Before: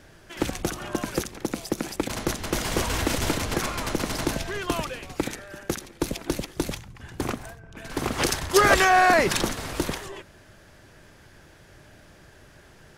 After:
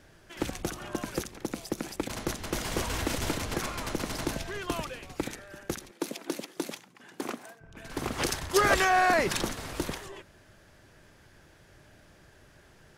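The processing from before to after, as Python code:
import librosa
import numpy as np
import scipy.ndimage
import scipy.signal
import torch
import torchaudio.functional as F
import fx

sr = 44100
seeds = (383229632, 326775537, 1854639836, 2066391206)

y = fx.highpass(x, sr, hz=210.0, slope=24, at=(5.91, 7.61))
y = F.gain(torch.from_numpy(y), -5.5).numpy()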